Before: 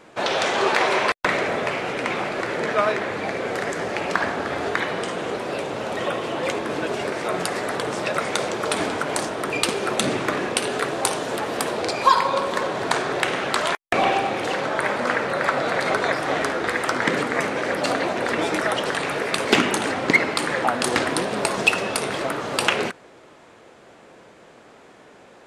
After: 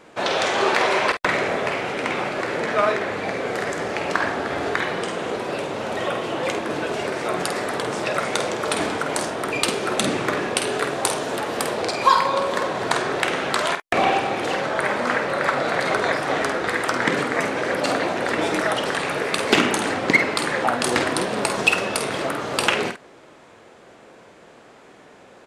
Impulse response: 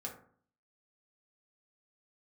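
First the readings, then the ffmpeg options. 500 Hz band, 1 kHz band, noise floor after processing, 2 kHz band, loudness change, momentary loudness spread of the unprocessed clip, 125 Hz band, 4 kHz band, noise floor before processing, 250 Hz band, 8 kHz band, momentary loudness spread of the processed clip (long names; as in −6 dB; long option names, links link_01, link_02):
+0.5 dB, +0.5 dB, −48 dBFS, +0.5 dB, +0.5 dB, 7 LU, +0.5 dB, +0.5 dB, −49 dBFS, +0.5 dB, +0.5 dB, 7 LU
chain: -filter_complex "[0:a]asplit=2[link_01][link_02];[link_02]adelay=49,volume=-8dB[link_03];[link_01][link_03]amix=inputs=2:normalize=0"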